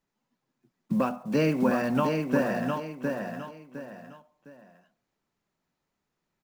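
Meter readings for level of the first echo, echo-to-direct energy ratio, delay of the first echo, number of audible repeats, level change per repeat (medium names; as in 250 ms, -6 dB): -4.5 dB, -4.0 dB, 709 ms, 3, -10.0 dB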